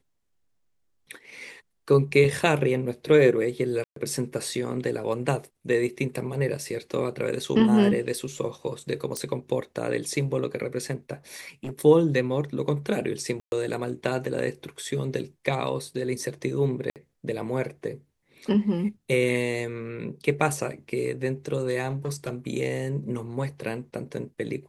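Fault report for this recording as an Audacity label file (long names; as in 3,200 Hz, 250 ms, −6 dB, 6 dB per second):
3.840000	3.960000	drop-out 123 ms
9.170000	9.170000	click −16 dBFS
11.640000	11.820000	clipping −28.5 dBFS
13.400000	13.520000	drop-out 121 ms
16.900000	16.960000	drop-out 58 ms
21.890000	22.330000	clipping −24.5 dBFS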